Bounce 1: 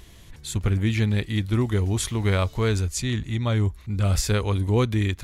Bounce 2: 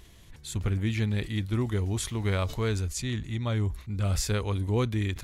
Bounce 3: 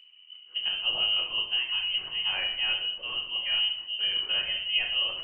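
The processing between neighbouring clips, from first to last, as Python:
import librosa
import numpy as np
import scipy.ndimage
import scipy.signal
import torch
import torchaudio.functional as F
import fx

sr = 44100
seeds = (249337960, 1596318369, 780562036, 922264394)

y1 = fx.sustainer(x, sr, db_per_s=140.0)
y1 = y1 * librosa.db_to_amplitude(-5.5)
y2 = fx.env_lowpass(y1, sr, base_hz=620.0, full_db=-24.0)
y2 = fx.freq_invert(y2, sr, carrier_hz=3000)
y2 = fx.room_shoebox(y2, sr, seeds[0], volume_m3=140.0, walls='mixed', distance_m=0.98)
y2 = y2 * librosa.db_to_amplitude(-5.5)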